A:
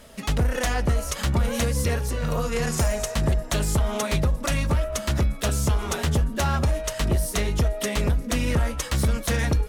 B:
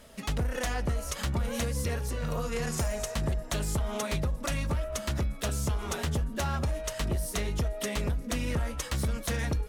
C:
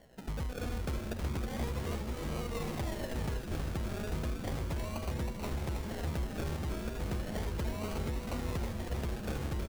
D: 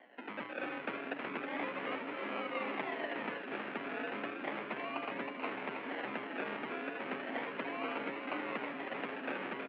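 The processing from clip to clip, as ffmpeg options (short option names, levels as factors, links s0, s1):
-af "acompressor=threshold=0.0708:ratio=2,volume=0.562"
-filter_complex "[0:a]acrusher=samples=35:mix=1:aa=0.000001:lfo=1:lforange=21:lforate=0.34,asplit=2[s0][s1];[s1]asplit=8[s2][s3][s4][s5][s6][s7][s8][s9];[s2]adelay=319,afreqshift=-140,volume=0.596[s10];[s3]adelay=638,afreqshift=-280,volume=0.347[s11];[s4]adelay=957,afreqshift=-420,volume=0.2[s12];[s5]adelay=1276,afreqshift=-560,volume=0.116[s13];[s6]adelay=1595,afreqshift=-700,volume=0.0676[s14];[s7]adelay=1914,afreqshift=-840,volume=0.0389[s15];[s8]adelay=2233,afreqshift=-980,volume=0.0226[s16];[s9]adelay=2552,afreqshift=-1120,volume=0.0132[s17];[s10][s11][s12][s13][s14][s15][s16][s17]amix=inputs=8:normalize=0[s18];[s0][s18]amix=inputs=2:normalize=0,volume=0.447"
-af "highpass=f=200:t=q:w=0.5412,highpass=f=200:t=q:w=1.307,lowpass=f=2600:t=q:w=0.5176,lowpass=f=2600:t=q:w=0.7071,lowpass=f=2600:t=q:w=1.932,afreqshift=55,equalizer=f=370:w=0.33:g=-13,volume=3.76"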